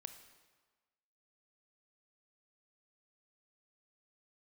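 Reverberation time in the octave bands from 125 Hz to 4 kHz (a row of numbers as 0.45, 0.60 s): 1.2, 1.2, 1.3, 1.4, 1.2, 1.1 s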